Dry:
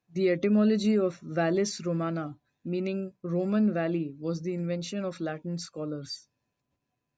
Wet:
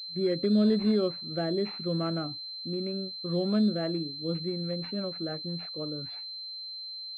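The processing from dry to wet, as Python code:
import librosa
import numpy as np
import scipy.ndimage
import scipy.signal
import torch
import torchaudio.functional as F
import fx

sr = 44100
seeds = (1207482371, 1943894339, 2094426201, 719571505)

y = fx.rotary_switch(x, sr, hz=0.8, then_hz=6.0, switch_at_s=3.41)
y = fx.pwm(y, sr, carrier_hz=4100.0)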